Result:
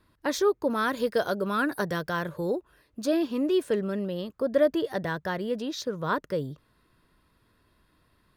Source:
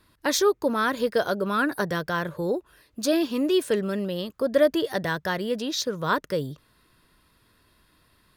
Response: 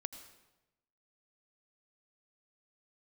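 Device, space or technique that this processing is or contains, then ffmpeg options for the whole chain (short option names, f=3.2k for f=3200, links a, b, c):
behind a face mask: -filter_complex "[0:a]asettb=1/sr,asplit=3[a][b][c];[a]atrim=end=0.704[d];[b]atrim=start=0.7:end=2.56,asetpts=PTS-STARTPTS,afade=t=in:d=0.004:c=qsin,afade=t=out:st=1.856:d=0.004:c=qsin,highshelf=f=3k:g=8[e];[c]atrim=start=2.556[f];[d][e]acrossfade=d=0.004:c1=hsin:c2=qsin[g];[g][f]acrossfade=d=0.004:c1=qsin:c2=hsin,highshelf=f=2.2k:g=-8,volume=-2dB"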